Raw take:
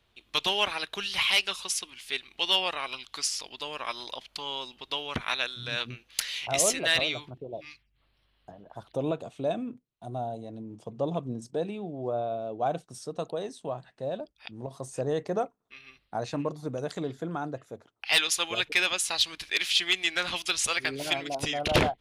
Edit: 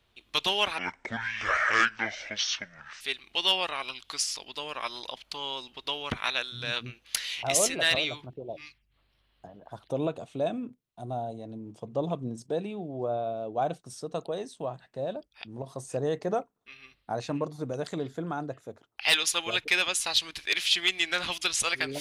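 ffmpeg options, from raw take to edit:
-filter_complex "[0:a]asplit=3[s0][s1][s2];[s0]atrim=end=0.784[s3];[s1]atrim=start=0.78:end=2.05,asetpts=PTS-STARTPTS,asetrate=25137,aresample=44100[s4];[s2]atrim=start=2.046[s5];[s3][s4]acrossfade=d=0.004:c1=hsin:c2=hsin[s6];[s6][s5]acrossfade=d=0.004:c1=hsin:c2=hsin"

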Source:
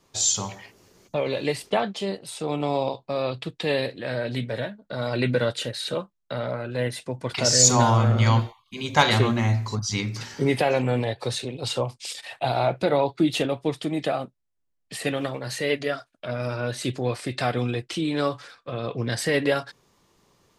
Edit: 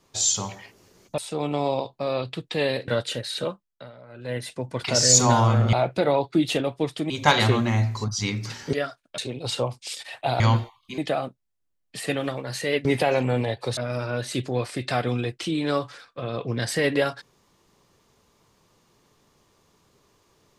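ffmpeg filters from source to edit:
-filter_complex "[0:a]asplit=13[s0][s1][s2][s3][s4][s5][s6][s7][s8][s9][s10][s11][s12];[s0]atrim=end=1.182[s13];[s1]atrim=start=2.268:end=3.972[s14];[s2]atrim=start=5.378:end=6.42,asetpts=PTS-STARTPTS,afade=t=out:st=0.582:d=0.46:silence=0.125893[s15];[s3]atrim=start=6.42:end=6.56,asetpts=PTS-STARTPTS,volume=0.126[s16];[s4]atrim=start=6.56:end=8.232,asetpts=PTS-STARTPTS,afade=t=in:d=0.46:silence=0.125893[s17];[s5]atrim=start=12.578:end=13.952[s18];[s6]atrim=start=8.808:end=10.442[s19];[s7]atrim=start=15.818:end=16.272[s20];[s8]atrim=start=11.358:end=12.582[s21];[s9]atrim=start=8.228:end=8.812[s22];[s10]atrim=start=13.948:end=15.822[s23];[s11]atrim=start=10.438:end=11.362[s24];[s12]atrim=start=16.268[s25];[s13][s14]acrossfade=d=0.004:c1=hsin:c2=hsin[s26];[s15][s16][s17]concat=n=3:v=0:a=1[s27];[s26][s27]acrossfade=d=0.004:c1=hsin:c2=hsin[s28];[s28][s18]acrossfade=d=0.004:c1=hsin:c2=hsin[s29];[s29][s19]acrossfade=d=0.004:c1=hsin:c2=hsin[s30];[s30][s20]acrossfade=d=0.004:c1=hsin:c2=hsin[s31];[s31][s21]acrossfade=d=0.004:c1=hsin:c2=hsin[s32];[s32][s22]acrossfade=d=0.004:c1=hsin:c2=hsin[s33];[s33][s23]acrossfade=d=0.004:c1=hsin:c2=hsin[s34];[s34][s24]acrossfade=d=0.004:c1=hsin:c2=hsin[s35];[s35][s25]acrossfade=d=0.004:c1=hsin:c2=hsin"

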